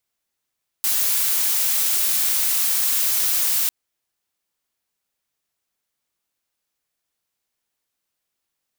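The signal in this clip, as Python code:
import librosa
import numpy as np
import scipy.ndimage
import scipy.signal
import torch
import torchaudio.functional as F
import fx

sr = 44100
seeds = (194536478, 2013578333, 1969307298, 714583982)

y = fx.noise_colour(sr, seeds[0], length_s=2.85, colour='blue', level_db=-20.0)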